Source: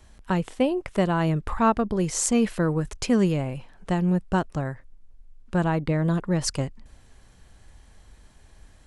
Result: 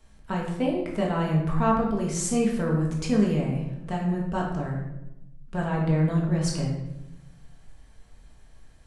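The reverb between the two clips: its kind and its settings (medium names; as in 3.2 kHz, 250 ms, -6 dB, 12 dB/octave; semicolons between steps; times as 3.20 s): simulated room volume 320 m³, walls mixed, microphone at 1.6 m; trim -7.5 dB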